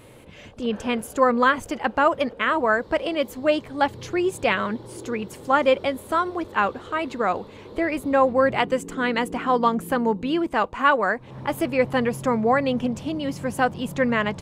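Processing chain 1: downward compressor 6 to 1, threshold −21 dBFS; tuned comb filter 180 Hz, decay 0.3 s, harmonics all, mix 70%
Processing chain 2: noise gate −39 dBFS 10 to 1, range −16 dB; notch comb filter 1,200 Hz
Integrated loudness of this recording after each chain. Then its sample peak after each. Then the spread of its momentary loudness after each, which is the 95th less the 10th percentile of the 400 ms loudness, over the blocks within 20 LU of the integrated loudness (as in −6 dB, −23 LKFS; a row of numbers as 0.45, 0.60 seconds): −35.0, −24.0 LKFS; −19.0, −7.5 dBFS; 6, 8 LU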